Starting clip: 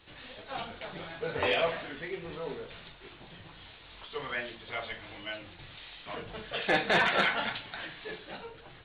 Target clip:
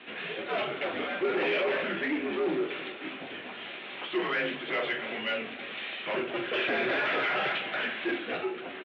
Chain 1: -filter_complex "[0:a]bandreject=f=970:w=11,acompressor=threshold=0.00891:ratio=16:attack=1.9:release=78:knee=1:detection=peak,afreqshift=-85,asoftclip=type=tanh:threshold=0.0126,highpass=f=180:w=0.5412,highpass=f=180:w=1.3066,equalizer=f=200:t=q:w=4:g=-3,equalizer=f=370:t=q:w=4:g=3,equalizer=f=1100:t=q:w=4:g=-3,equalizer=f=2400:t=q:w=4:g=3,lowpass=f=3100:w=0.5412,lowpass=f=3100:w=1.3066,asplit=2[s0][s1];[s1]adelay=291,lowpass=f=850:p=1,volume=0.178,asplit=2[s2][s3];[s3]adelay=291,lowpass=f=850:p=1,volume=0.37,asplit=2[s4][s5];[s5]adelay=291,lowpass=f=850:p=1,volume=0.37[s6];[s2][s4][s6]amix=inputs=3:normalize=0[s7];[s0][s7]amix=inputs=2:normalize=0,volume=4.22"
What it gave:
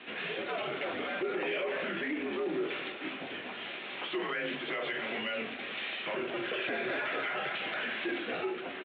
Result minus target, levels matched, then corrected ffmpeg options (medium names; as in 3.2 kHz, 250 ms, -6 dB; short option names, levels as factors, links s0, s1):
compression: peak gain reduction +11 dB
-filter_complex "[0:a]bandreject=f=970:w=11,acompressor=threshold=0.0335:ratio=16:attack=1.9:release=78:knee=1:detection=peak,afreqshift=-85,asoftclip=type=tanh:threshold=0.0126,highpass=f=180:w=0.5412,highpass=f=180:w=1.3066,equalizer=f=200:t=q:w=4:g=-3,equalizer=f=370:t=q:w=4:g=3,equalizer=f=1100:t=q:w=4:g=-3,equalizer=f=2400:t=q:w=4:g=3,lowpass=f=3100:w=0.5412,lowpass=f=3100:w=1.3066,asplit=2[s0][s1];[s1]adelay=291,lowpass=f=850:p=1,volume=0.178,asplit=2[s2][s3];[s3]adelay=291,lowpass=f=850:p=1,volume=0.37,asplit=2[s4][s5];[s5]adelay=291,lowpass=f=850:p=1,volume=0.37[s6];[s2][s4][s6]amix=inputs=3:normalize=0[s7];[s0][s7]amix=inputs=2:normalize=0,volume=4.22"